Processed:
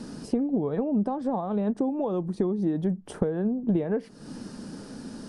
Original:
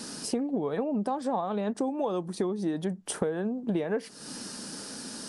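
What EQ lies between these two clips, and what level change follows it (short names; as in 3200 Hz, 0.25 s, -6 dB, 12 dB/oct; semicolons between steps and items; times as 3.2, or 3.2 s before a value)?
tilt -3.5 dB/oct; -2.5 dB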